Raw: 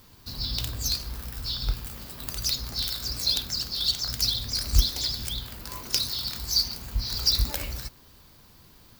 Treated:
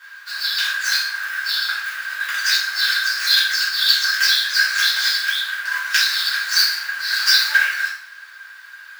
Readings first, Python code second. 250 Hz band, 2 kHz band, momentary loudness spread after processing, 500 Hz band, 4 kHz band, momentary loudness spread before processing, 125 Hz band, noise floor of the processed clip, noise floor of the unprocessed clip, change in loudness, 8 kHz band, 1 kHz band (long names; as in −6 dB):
below −20 dB, +29.0 dB, 9 LU, can't be measured, +9.0 dB, 12 LU, below −35 dB, −41 dBFS, −54 dBFS, +10.0 dB, +6.0 dB, +14.0 dB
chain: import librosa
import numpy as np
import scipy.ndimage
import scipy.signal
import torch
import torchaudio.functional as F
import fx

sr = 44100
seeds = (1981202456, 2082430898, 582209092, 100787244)

y = scipy.ndimage.median_filter(x, 5, mode='constant')
y = fx.highpass_res(y, sr, hz=1600.0, q=15.0)
y = fx.rev_double_slope(y, sr, seeds[0], early_s=0.5, late_s=1.7, knee_db=-25, drr_db=-10.0)